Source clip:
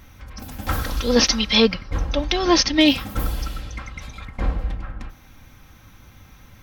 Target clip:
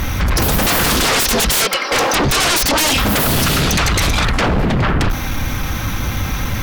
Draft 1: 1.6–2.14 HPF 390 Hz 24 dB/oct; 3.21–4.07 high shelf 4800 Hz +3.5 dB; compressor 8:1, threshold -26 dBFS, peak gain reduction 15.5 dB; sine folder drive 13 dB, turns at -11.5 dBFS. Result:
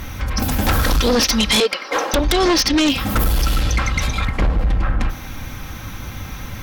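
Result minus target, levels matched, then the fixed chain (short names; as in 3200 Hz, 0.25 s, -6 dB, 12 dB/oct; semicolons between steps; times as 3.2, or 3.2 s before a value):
sine folder: distortion -25 dB
1.6–2.14 HPF 390 Hz 24 dB/oct; 3.21–4.07 high shelf 4800 Hz +3.5 dB; compressor 8:1, threshold -26 dBFS, peak gain reduction 15.5 dB; sine folder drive 24 dB, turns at -11.5 dBFS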